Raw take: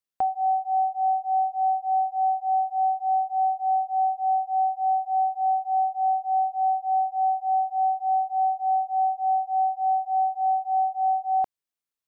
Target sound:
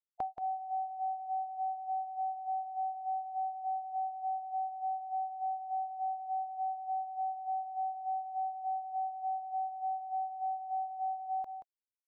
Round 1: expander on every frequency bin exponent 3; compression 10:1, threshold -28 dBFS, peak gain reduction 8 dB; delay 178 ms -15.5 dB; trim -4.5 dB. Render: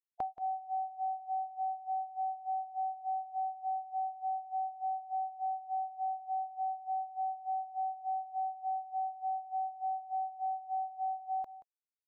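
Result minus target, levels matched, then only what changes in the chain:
echo-to-direct -6.5 dB
change: delay 178 ms -9 dB

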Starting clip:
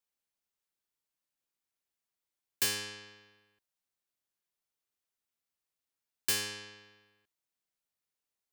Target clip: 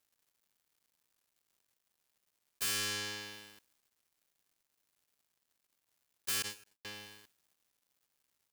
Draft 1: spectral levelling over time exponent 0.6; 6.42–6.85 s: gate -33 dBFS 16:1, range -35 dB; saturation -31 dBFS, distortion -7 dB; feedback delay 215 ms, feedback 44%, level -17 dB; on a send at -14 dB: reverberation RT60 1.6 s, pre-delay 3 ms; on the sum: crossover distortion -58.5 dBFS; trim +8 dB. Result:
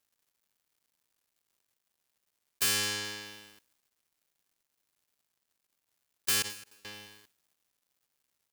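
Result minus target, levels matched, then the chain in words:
saturation: distortion -5 dB
spectral levelling over time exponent 0.6; 6.42–6.85 s: gate -33 dBFS 16:1, range -35 dB; saturation -39 dBFS, distortion -3 dB; feedback delay 215 ms, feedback 44%, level -17 dB; on a send at -14 dB: reverberation RT60 1.6 s, pre-delay 3 ms; on the sum: crossover distortion -58.5 dBFS; trim +8 dB

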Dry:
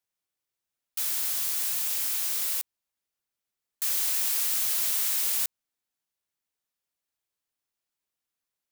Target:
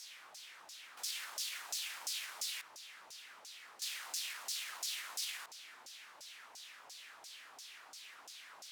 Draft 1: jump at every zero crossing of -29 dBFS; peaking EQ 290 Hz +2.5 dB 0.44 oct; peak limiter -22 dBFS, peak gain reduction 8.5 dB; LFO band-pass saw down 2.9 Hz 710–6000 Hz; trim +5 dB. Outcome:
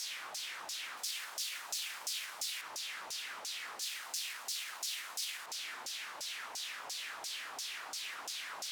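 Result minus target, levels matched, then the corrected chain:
jump at every zero crossing: distortion +9 dB
jump at every zero crossing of -40 dBFS; peaking EQ 290 Hz +2.5 dB 0.44 oct; peak limiter -22 dBFS, peak gain reduction 7.5 dB; LFO band-pass saw down 2.9 Hz 710–6000 Hz; trim +5 dB

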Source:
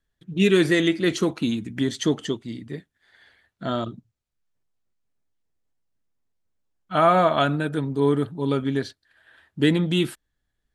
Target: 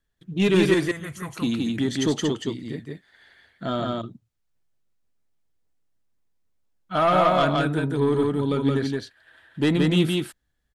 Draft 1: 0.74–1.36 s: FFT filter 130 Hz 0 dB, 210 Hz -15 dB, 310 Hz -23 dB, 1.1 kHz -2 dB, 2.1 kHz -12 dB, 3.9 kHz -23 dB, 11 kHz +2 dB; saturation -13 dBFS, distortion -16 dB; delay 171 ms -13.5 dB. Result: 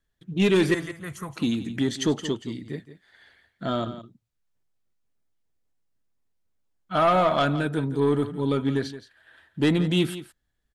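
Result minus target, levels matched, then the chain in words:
echo-to-direct -11.5 dB
0.74–1.36 s: FFT filter 130 Hz 0 dB, 210 Hz -15 dB, 310 Hz -23 dB, 1.1 kHz -2 dB, 2.1 kHz -12 dB, 3.9 kHz -23 dB, 11 kHz +2 dB; saturation -13 dBFS, distortion -16 dB; delay 171 ms -2 dB

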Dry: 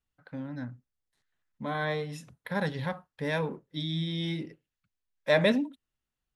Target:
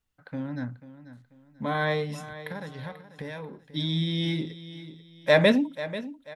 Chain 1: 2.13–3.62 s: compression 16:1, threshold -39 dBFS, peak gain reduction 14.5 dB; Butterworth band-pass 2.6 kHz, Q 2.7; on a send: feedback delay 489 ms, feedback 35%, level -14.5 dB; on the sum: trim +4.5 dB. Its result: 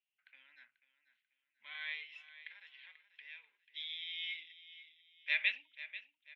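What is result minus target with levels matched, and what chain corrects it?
2 kHz band +4.0 dB
2.13–3.62 s: compression 16:1, threshold -39 dBFS, peak gain reduction 14.5 dB; on a send: feedback delay 489 ms, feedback 35%, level -14.5 dB; on the sum: trim +4.5 dB

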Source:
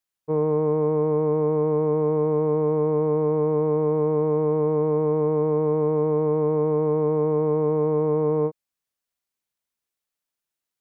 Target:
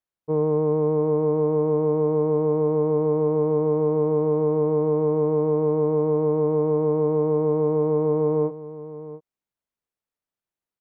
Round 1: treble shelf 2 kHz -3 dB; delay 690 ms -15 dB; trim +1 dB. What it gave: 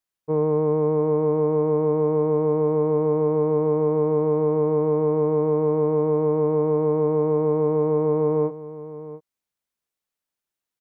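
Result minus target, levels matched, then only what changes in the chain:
2 kHz band +3.5 dB
change: treble shelf 2 kHz -12.5 dB

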